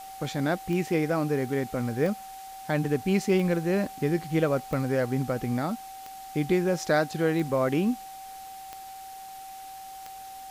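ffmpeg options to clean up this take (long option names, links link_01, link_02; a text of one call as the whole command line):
ffmpeg -i in.wav -af "adeclick=threshold=4,bandreject=frequency=770:width=30,afftdn=noise_reduction=30:noise_floor=-42" out.wav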